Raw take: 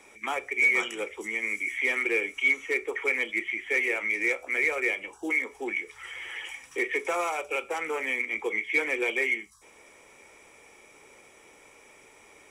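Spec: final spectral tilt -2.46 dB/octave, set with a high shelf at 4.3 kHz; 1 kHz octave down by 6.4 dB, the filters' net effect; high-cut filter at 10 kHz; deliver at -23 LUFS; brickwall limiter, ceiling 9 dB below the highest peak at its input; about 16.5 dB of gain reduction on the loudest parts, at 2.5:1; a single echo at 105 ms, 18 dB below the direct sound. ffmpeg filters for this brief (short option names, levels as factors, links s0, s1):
-af "lowpass=10000,equalizer=f=1000:t=o:g=-8.5,highshelf=f=4300:g=-8.5,acompressor=threshold=0.00355:ratio=2.5,alimiter=level_in=6.68:limit=0.0631:level=0:latency=1,volume=0.15,aecho=1:1:105:0.126,volume=21.1"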